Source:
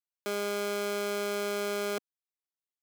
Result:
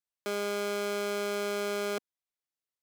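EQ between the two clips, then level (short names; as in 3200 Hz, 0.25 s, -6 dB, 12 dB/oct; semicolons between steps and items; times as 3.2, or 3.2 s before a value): high shelf 11000 Hz -5 dB; 0.0 dB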